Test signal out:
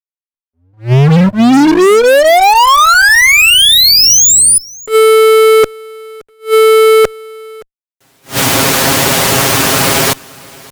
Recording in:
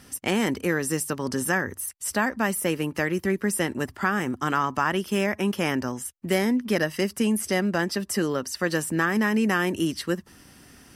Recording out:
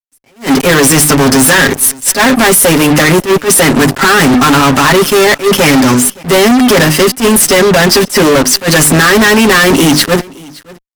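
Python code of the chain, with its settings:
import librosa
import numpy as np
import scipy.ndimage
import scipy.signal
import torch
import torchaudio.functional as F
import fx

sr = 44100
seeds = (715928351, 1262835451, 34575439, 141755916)

p1 = scipy.signal.sosfilt(scipy.signal.butter(2, 120.0, 'highpass', fs=sr, output='sos'), x)
p2 = fx.level_steps(p1, sr, step_db=16)
p3 = p1 + (p2 * librosa.db_to_amplitude(3.0))
p4 = fx.hum_notches(p3, sr, base_hz=50, count=7)
p5 = p4 + 0.76 * np.pad(p4, (int(7.4 * sr / 1000.0), 0))[:len(p4)]
p6 = fx.fuzz(p5, sr, gain_db=34.0, gate_db=-36.0)
p7 = p6 + fx.echo_single(p6, sr, ms=570, db=-23.5, dry=0)
p8 = fx.attack_slew(p7, sr, db_per_s=260.0)
y = p8 * librosa.db_to_amplitude(8.5)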